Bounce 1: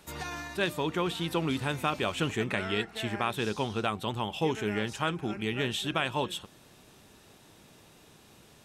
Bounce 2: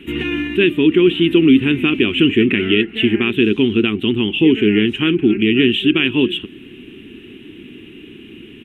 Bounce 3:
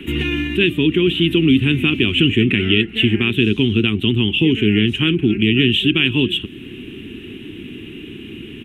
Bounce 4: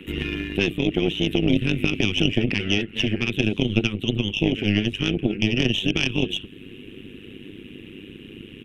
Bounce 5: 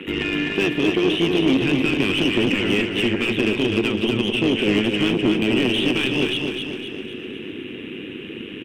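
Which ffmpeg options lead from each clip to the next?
-filter_complex "[0:a]firequalizer=gain_entry='entry(160,0);entry(250,13);entry(370,12);entry(560,-17);entry(850,-17);entry(1900,1);entry(2900,11);entry(4600,-28);entry(10000,-17)':delay=0.05:min_phase=1,asplit=2[a][b];[b]alimiter=limit=-20.5dB:level=0:latency=1:release=380,volume=3dB[c];[a][c]amix=inputs=2:normalize=0,volume=5.5dB"
-filter_complex "[0:a]equalizer=f=100:t=o:w=1.9:g=3.5,acrossover=split=150|3000[a][b][c];[b]acompressor=threshold=-43dB:ratio=1.5[d];[a][d][c]amix=inputs=3:normalize=0,volume=6dB"
-af "tremolo=f=100:d=0.788,aeval=exprs='0.794*(cos(1*acos(clip(val(0)/0.794,-1,1)))-cos(1*PI/2))+0.282*(cos(2*acos(clip(val(0)/0.794,-1,1)))-cos(2*PI/2))+0.0447*(cos(3*acos(clip(val(0)/0.794,-1,1)))-cos(3*PI/2))':c=same,volume=-2.5dB"
-filter_complex "[0:a]asplit=2[a][b];[b]highpass=f=720:p=1,volume=27dB,asoftclip=type=tanh:threshold=-1dB[c];[a][c]amix=inputs=2:normalize=0,lowpass=f=1.3k:p=1,volume=-6dB,aecho=1:1:254|508|762|1016|1270|1524:0.562|0.287|0.146|0.0746|0.038|0.0194,volume=-6dB"

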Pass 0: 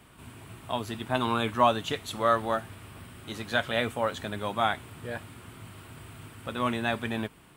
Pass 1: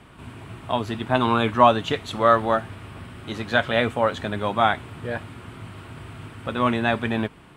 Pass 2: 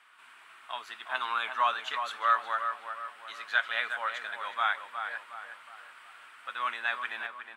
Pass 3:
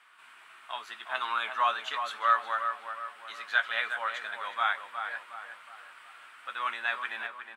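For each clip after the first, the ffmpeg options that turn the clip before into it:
-af "aemphasis=mode=reproduction:type=50fm,volume=7dB"
-filter_complex "[0:a]highpass=f=1.4k:t=q:w=1.7,asplit=2[a][b];[b]adelay=363,lowpass=f=2.1k:p=1,volume=-6.5dB,asplit=2[c][d];[d]adelay=363,lowpass=f=2.1k:p=1,volume=0.48,asplit=2[e][f];[f]adelay=363,lowpass=f=2.1k:p=1,volume=0.48,asplit=2[g][h];[h]adelay=363,lowpass=f=2.1k:p=1,volume=0.48,asplit=2[i][j];[j]adelay=363,lowpass=f=2.1k:p=1,volume=0.48,asplit=2[k][l];[l]adelay=363,lowpass=f=2.1k:p=1,volume=0.48[m];[a][c][e][g][i][k][m]amix=inputs=7:normalize=0,volume=-8.5dB"
-filter_complex "[0:a]asplit=2[a][b];[b]adelay=14,volume=-10.5dB[c];[a][c]amix=inputs=2:normalize=0"

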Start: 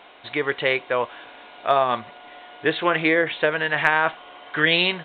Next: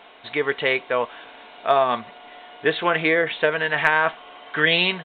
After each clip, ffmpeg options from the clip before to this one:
-af "aecho=1:1:4.5:0.3"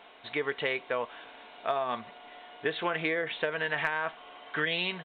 -af "acompressor=threshold=-20dB:ratio=6,volume=-6dB"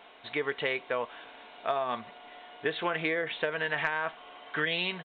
-af "aresample=16000,aresample=44100"

